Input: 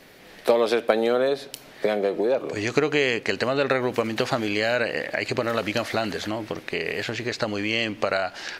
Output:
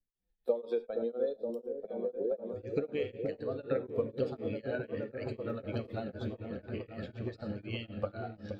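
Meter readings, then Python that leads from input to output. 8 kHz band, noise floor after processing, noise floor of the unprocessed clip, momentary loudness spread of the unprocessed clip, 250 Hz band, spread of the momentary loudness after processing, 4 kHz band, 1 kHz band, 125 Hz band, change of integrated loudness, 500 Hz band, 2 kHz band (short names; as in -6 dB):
under -30 dB, -76 dBFS, -47 dBFS, 7 LU, -11.0 dB, 7 LU, -22.5 dB, -19.5 dB, -6.0 dB, -12.5 dB, -11.0 dB, -22.5 dB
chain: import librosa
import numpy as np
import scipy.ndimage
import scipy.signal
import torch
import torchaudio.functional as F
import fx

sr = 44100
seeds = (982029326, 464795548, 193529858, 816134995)

p1 = fx.bin_expand(x, sr, power=2.0)
p2 = fx.graphic_eq_31(p1, sr, hz=(160, 500, 1000, 2000, 6300, 10000), db=(-5, 11, -8, -9, -11, -6))
p3 = fx.level_steps(p2, sr, step_db=24)
p4 = p2 + (p3 * librosa.db_to_amplitude(-3.0))
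p5 = fx.bass_treble(p4, sr, bass_db=12, treble_db=-10)
p6 = p5 + fx.echo_opening(p5, sr, ms=471, hz=400, octaves=1, feedback_pct=70, wet_db=-3, dry=0)
p7 = fx.rider(p6, sr, range_db=3, speed_s=2.0)
p8 = fx.comb_fb(p7, sr, f0_hz=93.0, decay_s=0.37, harmonics='all', damping=0.0, mix_pct=60)
p9 = fx.rev_gated(p8, sr, seeds[0], gate_ms=130, shape='rising', drr_db=12.0)
p10 = p9 * np.abs(np.cos(np.pi * 4.0 * np.arange(len(p9)) / sr))
y = p10 * librosa.db_to_amplitude(-8.0)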